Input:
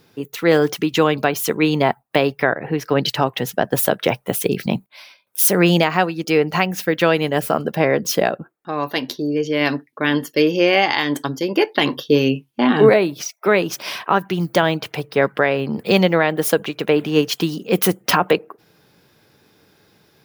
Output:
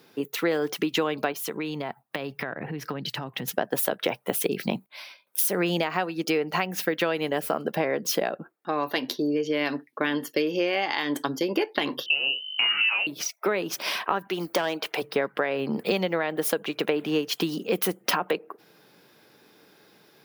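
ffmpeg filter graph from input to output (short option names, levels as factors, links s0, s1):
-filter_complex "[0:a]asettb=1/sr,asplit=3[s0][s1][s2];[s0]atrim=end=1.324[s3];[s1]atrim=start=1.32:end=3.48,asetpts=PTS-STARTPTS,afade=t=in:d=0.004:c=qsin,afade=t=out:st=2.156:d=0.004:c=qsin,asubboost=boost=8.5:cutoff=200,acompressor=threshold=0.0501:ratio=8:attack=3.2:release=140:knee=1:detection=peak[s4];[s2]atrim=start=3.476[s5];[s3][s4]acrossfade=d=0.004:c1=hsin:c2=qsin[s6];[s6][s5]acrossfade=d=0.004:c1=qsin:c2=hsin,asettb=1/sr,asplit=3[s7][s8][s9];[s7]atrim=end=12.064[s10];[s8]atrim=start=12.06:end=13.07,asetpts=PTS-STARTPTS,afade=t=in:d=0.004:c=qsin,afade=t=out:st=1.006:d=0.004:c=qsin,aeval=exprs='val(0)+0.0158*(sin(2*PI*50*n/s)+sin(2*PI*2*50*n/s)/2+sin(2*PI*3*50*n/s)/3+sin(2*PI*4*50*n/s)/4+sin(2*PI*5*50*n/s)/5)':c=same,asplit=2[s11][s12];[s12]adelay=20,volume=0.266[s13];[s11][s13]amix=inputs=2:normalize=0,atrim=end_sample=44541,lowpass=f=2600:t=q:w=0.5098,lowpass=f=2600:t=q:w=0.6013,lowpass=f=2600:t=q:w=0.9,lowpass=f=2600:t=q:w=2.563,afreqshift=-3100[s14];[s9]atrim=start=13.066[s15];[s10][s14]acrossfade=d=0.004:c1=hsin:c2=qsin[s16];[s16][s15]acrossfade=d=0.004:c1=qsin:c2=hsin,asettb=1/sr,asplit=3[s17][s18][s19];[s17]atrim=end=14.274[s20];[s18]atrim=start=14.27:end=15.02,asetpts=PTS-STARTPTS,afade=t=in:d=0.004:c=qsin,afade=t=out:st=0.746:d=0.004:c=qsin,highpass=310,aeval=exprs='clip(val(0),-1,0.2)':c=same[s21];[s19]atrim=start=15.016[s22];[s20][s21]acrossfade=d=0.004:c1=hsin:c2=qsin[s23];[s23][s22]acrossfade=d=0.004:c1=qsin:c2=hsin,highpass=210,equalizer=f=6800:w=1.5:g=-2.5,acompressor=threshold=0.0794:ratio=6"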